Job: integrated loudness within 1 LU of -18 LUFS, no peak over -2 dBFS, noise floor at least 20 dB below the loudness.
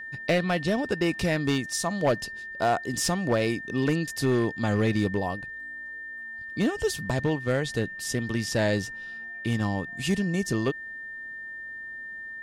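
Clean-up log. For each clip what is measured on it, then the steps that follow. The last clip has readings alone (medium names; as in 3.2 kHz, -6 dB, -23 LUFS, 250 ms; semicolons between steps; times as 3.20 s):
clipped samples 0.8%; clipping level -16.5 dBFS; steady tone 1.8 kHz; tone level -36 dBFS; loudness -28.0 LUFS; peak level -16.5 dBFS; loudness target -18.0 LUFS
-> clip repair -16.5 dBFS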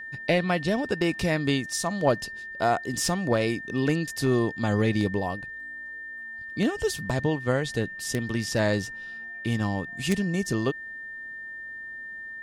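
clipped samples 0.0%; steady tone 1.8 kHz; tone level -36 dBFS
-> band-stop 1.8 kHz, Q 30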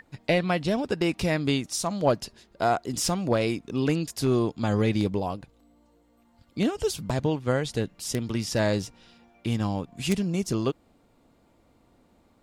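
steady tone not found; loudness -27.0 LUFS; peak level -8.0 dBFS; loudness target -18.0 LUFS
-> trim +9 dB; peak limiter -2 dBFS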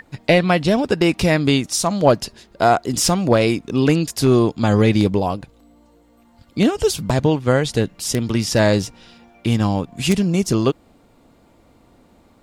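loudness -18.0 LUFS; peak level -2.0 dBFS; noise floor -54 dBFS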